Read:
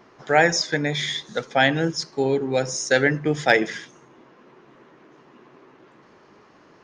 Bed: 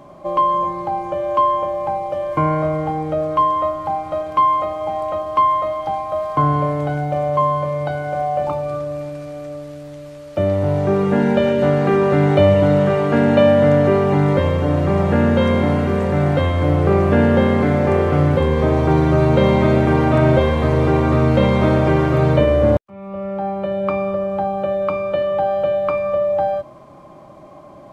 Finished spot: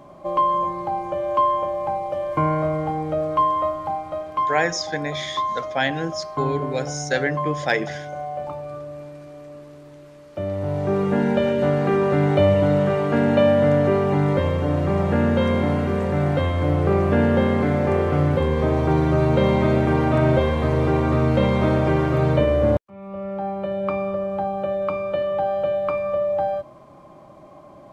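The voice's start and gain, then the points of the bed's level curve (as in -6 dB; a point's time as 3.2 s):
4.20 s, -4.0 dB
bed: 3.72 s -3 dB
4.69 s -9.5 dB
10.41 s -9.5 dB
10.98 s -4 dB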